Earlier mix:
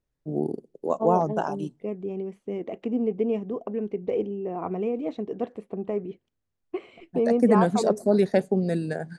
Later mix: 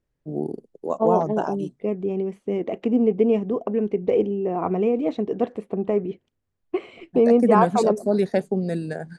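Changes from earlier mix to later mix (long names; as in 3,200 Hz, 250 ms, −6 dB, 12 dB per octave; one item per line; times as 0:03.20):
second voice +6.5 dB
reverb: off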